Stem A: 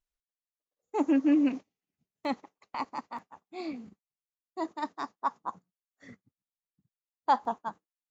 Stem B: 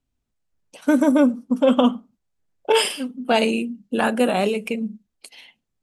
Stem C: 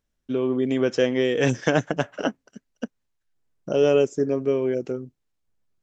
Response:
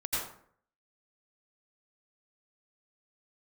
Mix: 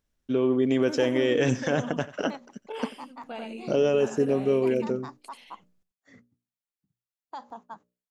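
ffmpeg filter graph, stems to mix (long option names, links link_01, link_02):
-filter_complex "[0:a]bandreject=frequency=60:width_type=h:width=6,bandreject=frequency=120:width_type=h:width=6,bandreject=frequency=180:width_type=h:width=6,bandreject=frequency=240:width_type=h:width=6,bandreject=frequency=300:width_type=h:width=6,bandreject=frequency=360:width_type=h:width=6,bandreject=frequency=420:width_type=h:width=6,bandreject=frequency=480:width_type=h:width=6,bandreject=frequency=540:width_type=h:width=6,bandreject=frequency=600:width_type=h:width=6,acrossover=split=170|3000[link_01][link_02][link_03];[link_02]acompressor=threshold=-27dB:ratio=6[link_04];[link_01][link_04][link_03]amix=inputs=3:normalize=0,alimiter=level_in=2.5dB:limit=-24dB:level=0:latency=1:release=149,volume=-2.5dB,adelay=50,volume=-3dB[link_05];[1:a]acrossover=split=3200[link_06][link_07];[link_07]acompressor=threshold=-37dB:ratio=4:attack=1:release=60[link_08];[link_06][link_08]amix=inputs=2:normalize=0,volume=-9dB,afade=type=in:start_time=4.51:duration=0.36:silence=0.281838,asplit=2[link_09][link_10];[link_10]volume=-3.5dB[link_11];[2:a]alimiter=limit=-14dB:level=0:latency=1:release=34,volume=0dB,asplit=2[link_12][link_13];[link_13]volume=-18dB[link_14];[link_11][link_14]amix=inputs=2:normalize=0,aecho=0:1:89:1[link_15];[link_05][link_09][link_12][link_15]amix=inputs=4:normalize=0"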